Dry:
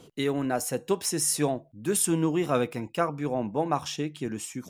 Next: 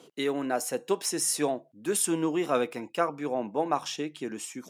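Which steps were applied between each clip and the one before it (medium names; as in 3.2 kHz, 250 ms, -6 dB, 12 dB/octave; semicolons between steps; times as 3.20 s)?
high-pass 270 Hz 12 dB/octave; treble shelf 12 kHz -5.5 dB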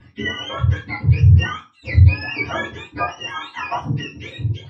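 spectrum inverted on a logarithmic axis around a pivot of 910 Hz; reverberation RT60 0.30 s, pre-delay 3 ms, DRR -5 dB; trim -2 dB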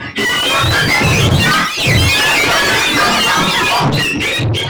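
overdrive pedal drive 46 dB, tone 4 kHz, clips at -1 dBFS; ever faster or slower copies 316 ms, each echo +4 st, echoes 3; trim -6 dB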